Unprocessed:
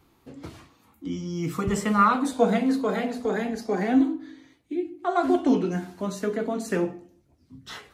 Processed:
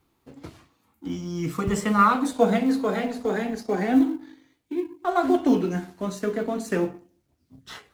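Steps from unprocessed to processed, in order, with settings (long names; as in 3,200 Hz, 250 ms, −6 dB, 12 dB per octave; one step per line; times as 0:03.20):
mu-law and A-law mismatch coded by A
level +1.5 dB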